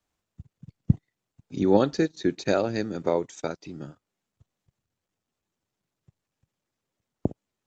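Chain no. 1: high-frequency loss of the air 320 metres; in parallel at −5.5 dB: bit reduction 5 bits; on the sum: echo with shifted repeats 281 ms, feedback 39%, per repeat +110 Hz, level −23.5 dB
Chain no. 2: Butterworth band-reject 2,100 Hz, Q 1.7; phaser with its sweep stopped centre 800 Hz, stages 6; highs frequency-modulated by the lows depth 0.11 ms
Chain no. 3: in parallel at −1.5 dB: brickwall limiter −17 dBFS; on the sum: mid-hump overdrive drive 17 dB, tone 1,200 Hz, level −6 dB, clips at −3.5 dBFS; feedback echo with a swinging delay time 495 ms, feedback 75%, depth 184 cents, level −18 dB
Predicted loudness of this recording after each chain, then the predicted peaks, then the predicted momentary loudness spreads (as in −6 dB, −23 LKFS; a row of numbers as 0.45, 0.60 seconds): −23.5, −29.5, −21.5 LKFS; −2.0, −10.5, −4.5 dBFS; 18, 21, 22 LU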